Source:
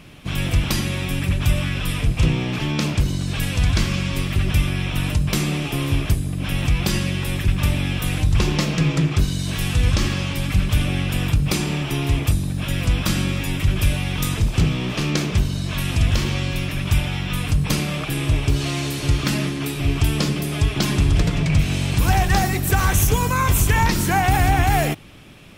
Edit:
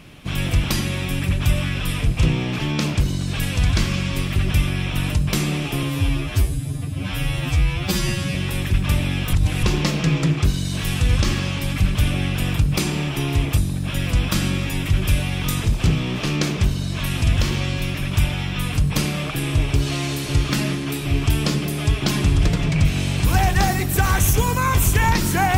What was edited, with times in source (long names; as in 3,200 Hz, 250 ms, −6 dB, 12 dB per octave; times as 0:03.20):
0:05.83–0:07.09: time-stretch 2×
0:08.07–0:08.37: reverse